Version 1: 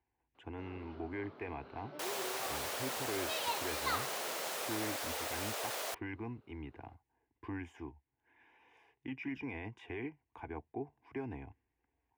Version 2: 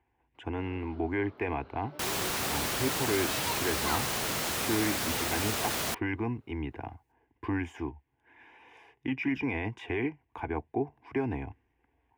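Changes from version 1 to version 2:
speech +10.5 dB; second sound: remove ladder high-pass 430 Hz, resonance 40%

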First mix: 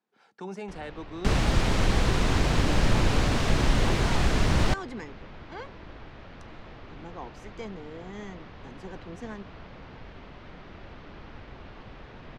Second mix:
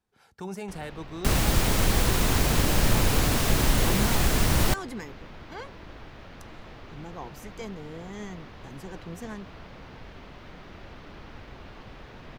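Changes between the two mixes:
speech: remove high-pass 190 Hz 24 dB/octave; master: remove distance through air 97 m

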